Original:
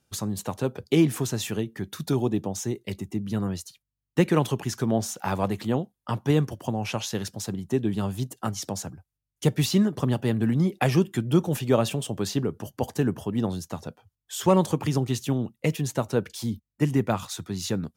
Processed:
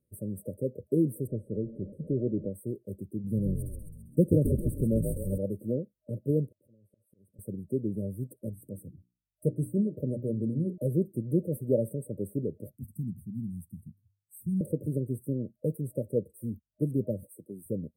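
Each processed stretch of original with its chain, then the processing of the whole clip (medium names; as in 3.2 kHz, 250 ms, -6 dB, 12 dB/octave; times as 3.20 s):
1.27–2.50 s: jump at every zero crossing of -33.5 dBFS + low-pass 2.5 kHz
3.24–5.38 s: tone controls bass +6 dB, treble +5 dB + frequency-shifting echo 132 ms, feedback 55%, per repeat -66 Hz, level -5.5 dB
6.47–7.39 s: slow attack 730 ms + compression 12:1, threshold -50 dBFS
8.49–10.78 s: touch-sensitive phaser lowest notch 280 Hz, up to 3.6 kHz, full sweep at -20 dBFS + hum notches 60/120/180/240/300/360 Hz
12.76–14.61 s: Chebyshev band-stop 210–2400 Hz, order 3 + hum notches 50/100 Hz
17.24–17.66 s: high-pass 250 Hz + de-esser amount 35%
whole clip: peaking EQ 5.7 kHz -10.5 dB 1.5 oct; FFT band-reject 620–8000 Hz; dynamic bell 510 Hz, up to +5 dB, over -54 dBFS, Q 4; trim -6 dB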